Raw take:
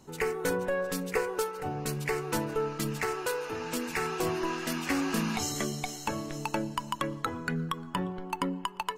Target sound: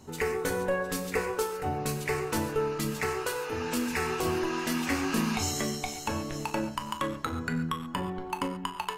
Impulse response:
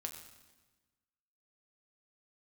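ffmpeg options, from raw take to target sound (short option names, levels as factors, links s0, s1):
-filter_complex "[0:a]equalizer=f=88:w=4.4:g=8,asplit=2[s0][s1];[s1]alimiter=level_in=1.06:limit=0.0631:level=0:latency=1:release=496,volume=0.944,volume=1[s2];[s0][s2]amix=inputs=2:normalize=0[s3];[1:a]atrim=start_sample=2205,atrim=end_sample=6615[s4];[s3][s4]afir=irnorm=-1:irlink=0"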